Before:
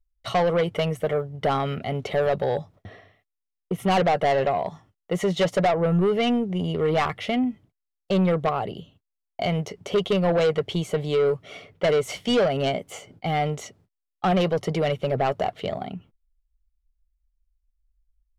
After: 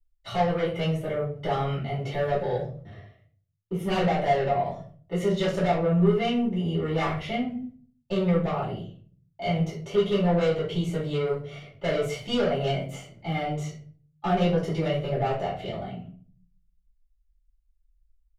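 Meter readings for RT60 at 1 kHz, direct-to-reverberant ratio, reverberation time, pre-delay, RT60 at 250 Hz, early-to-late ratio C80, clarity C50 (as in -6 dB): 0.40 s, -10.5 dB, 0.45 s, 3 ms, 0.70 s, 11.0 dB, 6.0 dB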